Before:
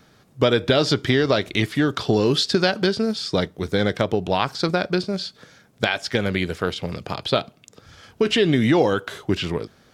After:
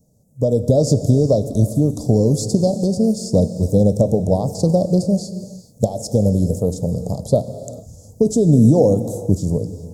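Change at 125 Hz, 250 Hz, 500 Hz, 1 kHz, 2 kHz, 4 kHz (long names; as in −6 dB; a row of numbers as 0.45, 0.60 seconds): +10.0 dB, +6.0 dB, +3.5 dB, −5.0 dB, below −40 dB, −12.5 dB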